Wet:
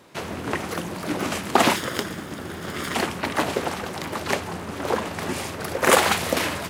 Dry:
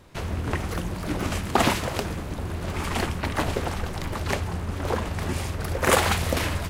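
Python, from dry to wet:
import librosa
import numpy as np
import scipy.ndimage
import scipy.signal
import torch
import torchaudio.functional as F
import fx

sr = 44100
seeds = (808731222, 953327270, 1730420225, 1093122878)

y = fx.lower_of_two(x, sr, delay_ms=0.59, at=(1.76, 2.95))
y = scipy.signal.sosfilt(scipy.signal.butter(2, 200.0, 'highpass', fs=sr, output='sos'), y)
y = y * librosa.db_to_amplitude(3.5)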